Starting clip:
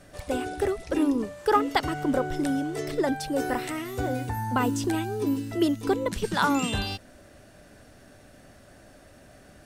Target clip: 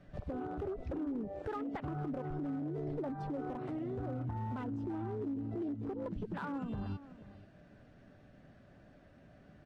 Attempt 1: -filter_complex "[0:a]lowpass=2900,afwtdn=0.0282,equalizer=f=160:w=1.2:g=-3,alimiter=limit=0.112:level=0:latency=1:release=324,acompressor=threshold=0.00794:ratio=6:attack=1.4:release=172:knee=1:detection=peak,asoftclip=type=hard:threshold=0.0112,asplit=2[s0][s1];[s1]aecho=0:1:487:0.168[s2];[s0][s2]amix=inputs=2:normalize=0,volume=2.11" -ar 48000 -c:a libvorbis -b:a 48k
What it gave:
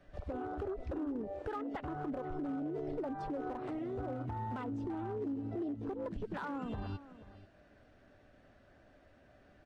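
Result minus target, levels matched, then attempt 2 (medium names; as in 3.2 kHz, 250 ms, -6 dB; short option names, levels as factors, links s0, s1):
125 Hz band -3.5 dB
-filter_complex "[0:a]lowpass=2900,afwtdn=0.0282,equalizer=f=160:w=1.2:g=8.5,alimiter=limit=0.112:level=0:latency=1:release=324,acompressor=threshold=0.00794:ratio=6:attack=1.4:release=172:knee=1:detection=peak,asoftclip=type=hard:threshold=0.0112,asplit=2[s0][s1];[s1]aecho=0:1:487:0.168[s2];[s0][s2]amix=inputs=2:normalize=0,volume=2.11" -ar 48000 -c:a libvorbis -b:a 48k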